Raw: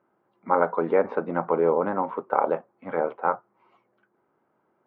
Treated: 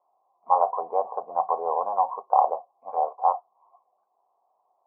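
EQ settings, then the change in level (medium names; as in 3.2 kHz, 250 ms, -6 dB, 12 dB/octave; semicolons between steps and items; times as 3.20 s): cascade formant filter a; high-order bell 680 Hz +12 dB; 0.0 dB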